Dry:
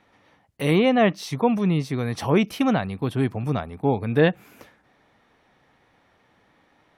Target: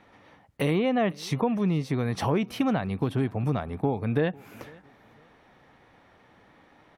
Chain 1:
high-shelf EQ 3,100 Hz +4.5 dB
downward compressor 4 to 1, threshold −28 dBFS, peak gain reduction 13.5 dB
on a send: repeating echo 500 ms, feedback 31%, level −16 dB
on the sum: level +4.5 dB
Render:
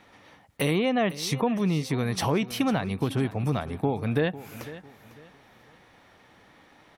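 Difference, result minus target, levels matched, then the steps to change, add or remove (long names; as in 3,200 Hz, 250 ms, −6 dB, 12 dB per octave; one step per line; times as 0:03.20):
8,000 Hz band +7.5 dB; echo-to-direct +8.5 dB
change: high-shelf EQ 3,100 Hz −5.5 dB
change: repeating echo 500 ms, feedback 31%, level −24.5 dB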